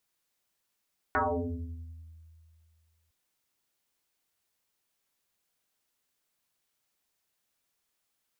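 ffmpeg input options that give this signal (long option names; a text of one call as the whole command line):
ffmpeg -f lavfi -i "aevalsrc='0.075*pow(10,-3*t/2.32)*sin(2*PI*80.9*t+10*pow(10,-3*t/1.32)*sin(2*PI*2.13*80.9*t))':duration=1.96:sample_rate=44100" out.wav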